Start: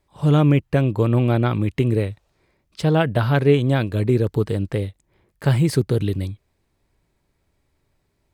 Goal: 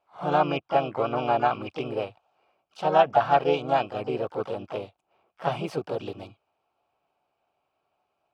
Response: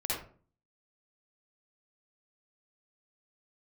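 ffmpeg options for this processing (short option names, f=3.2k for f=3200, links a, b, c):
-filter_complex "[0:a]asplit=3[a][b][c];[a]bandpass=f=730:t=q:w=8,volume=0dB[d];[b]bandpass=f=1.09k:t=q:w=8,volume=-6dB[e];[c]bandpass=f=2.44k:t=q:w=8,volume=-9dB[f];[d][e][f]amix=inputs=3:normalize=0,asplit=3[g][h][i];[h]asetrate=52444,aresample=44100,atempo=0.840896,volume=-3dB[j];[i]asetrate=88200,aresample=44100,atempo=0.5,volume=-18dB[k];[g][j][k]amix=inputs=3:normalize=0,volume=8dB"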